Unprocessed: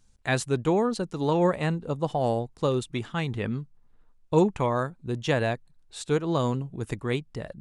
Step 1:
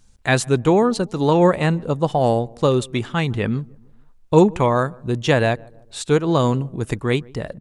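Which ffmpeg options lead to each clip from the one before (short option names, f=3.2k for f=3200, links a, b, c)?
-filter_complex "[0:a]asplit=2[a][b];[b]adelay=151,lowpass=f=930:p=1,volume=-24dB,asplit=2[c][d];[d]adelay=151,lowpass=f=930:p=1,volume=0.5,asplit=2[e][f];[f]adelay=151,lowpass=f=930:p=1,volume=0.5[g];[a][c][e][g]amix=inputs=4:normalize=0,volume=8dB"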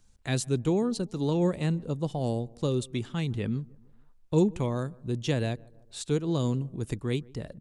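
-filter_complex "[0:a]acrossover=split=430|3000[a][b][c];[b]acompressor=threshold=-53dB:ratio=1.5[d];[a][d][c]amix=inputs=3:normalize=0,volume=-7.5dB"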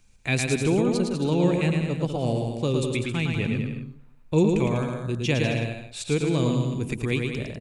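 -filter_complex "[0:a]equalizer=f=2.4k:w=4.3:g=13,asplit=2[a][b];[b]aecho=0:1:110|198|268.4|324.7|369.8:0.631|0.398|0.251|0.158|0.1[c];[a][c]amix=inputs=2:normalize=0,volume=2.5dB"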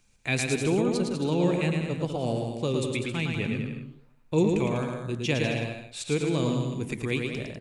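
-af "lowshelf=f=110:g=-7.5,flanger=delay=5.4:depth=9.4:regen=-90:speed=1.2:shape=sinusoidal,volume=3dB"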